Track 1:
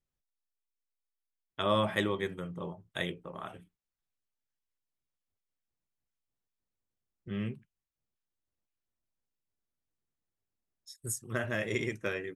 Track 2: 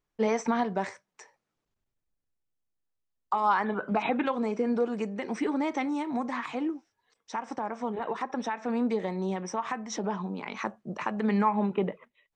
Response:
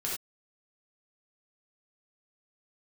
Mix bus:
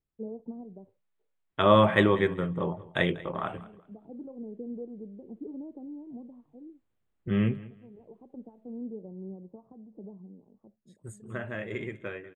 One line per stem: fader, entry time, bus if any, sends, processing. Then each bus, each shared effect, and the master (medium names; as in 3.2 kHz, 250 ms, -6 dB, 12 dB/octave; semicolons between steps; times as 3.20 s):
8.76 s -2 dB -> 9.05 s -14 dB, 0.00 s, no send, echo send -19 dB, level rider gain up to 12 dB; boxcar filter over 8 samples
-12.5 dB, 0.00 s, no send, no echo send, inverse Chebyshev low-pass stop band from 2.4 kHz, stop band 70 dB; peaking EQ 62 Hz +11 dB 2.5 oct; auto duck -13 dB, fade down 1.15 s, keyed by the first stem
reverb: none
echo: feedback delay 191 ms, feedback 23%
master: none